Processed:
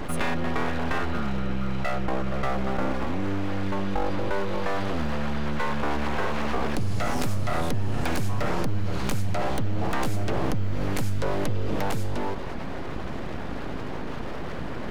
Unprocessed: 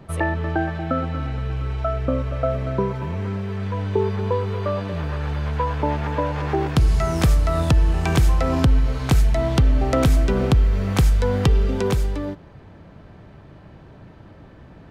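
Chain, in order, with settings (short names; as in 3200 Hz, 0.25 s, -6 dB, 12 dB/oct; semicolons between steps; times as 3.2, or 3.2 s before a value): full-wave rectifier; fast leveller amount 70%; gain -8 dB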